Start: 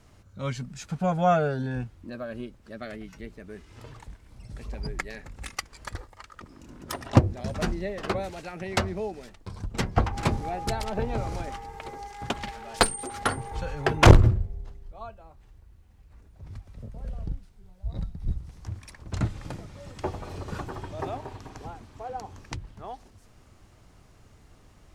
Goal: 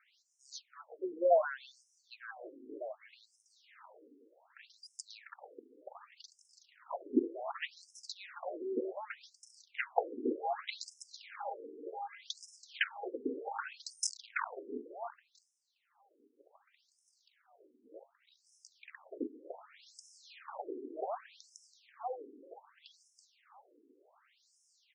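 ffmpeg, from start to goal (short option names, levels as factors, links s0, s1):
-filter_complex "[0:a]asplit=5[s0][s1][s2][s3][s4];[s1]adelay=330,afreqshift=36,volume=0.237[s5];[s2]adelay=660,afreqshift=72,volume=0.0977[s6];[s3]adelay=990,afreqshift=108,volume=0.0398[s7];[s4]adelay=1320,afreqshift=144,volume=0.0164[s8];[s0][s5][s6][s7][s8]amix=inputs=5:normalize=0,aeval=exprs='(tanh(6.31*val(0)+0.7)-tanh(0.7))/6.31':c=same,afftfilt=real='re*between(b*sr/1024,330*pow(7300/330,0.5+0.5*sin(2*PI*0.66*pts/sr))/1.41,330*pow(7300/330,0.5+0.5*sin(2*PI*0.66*pts/sr))*1.41)':imag='im*between(b*sr/1024,330*pow(7300/330,0.5+0.5*sin(2*PI*0.66*pts/sr))/1.41,330*pow(7300/330,0.5+0.5*sin(2*PI*0.66*pts/sr))*1.41)':win_size=1024:overlap=0.75,volume=1.5"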